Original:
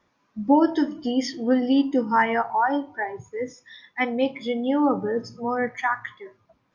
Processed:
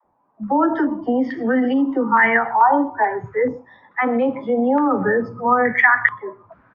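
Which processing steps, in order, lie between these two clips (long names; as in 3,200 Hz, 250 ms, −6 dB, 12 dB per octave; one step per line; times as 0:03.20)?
single-tap delay 124 ms −23 dB
automatic gain control gain up to 14 dB
all-pass dispersion lows, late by 49 ms, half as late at 360 Hz
boost into a limiter +10 dB
low-pass on a step sequencer 2.3 Hz 850–1,900 Hz
level −11 dB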